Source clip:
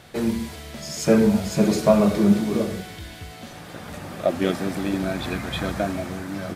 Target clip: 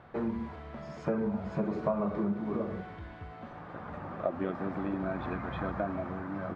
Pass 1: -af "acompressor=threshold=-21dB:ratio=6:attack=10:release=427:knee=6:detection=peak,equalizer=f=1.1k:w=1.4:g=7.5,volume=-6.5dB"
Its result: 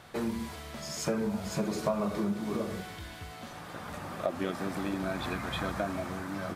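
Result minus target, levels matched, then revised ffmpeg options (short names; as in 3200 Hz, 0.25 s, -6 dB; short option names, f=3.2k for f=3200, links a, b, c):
2000 Hz band +4.0 dB
-af "acompressor=threshold=-21dB:ratio=6:attack=10:release=427:knee=6:detection=peak,lowpass=1.5k,equalizer=f=1.1k:w=1.4:g=7.5,volume=-6.5dB"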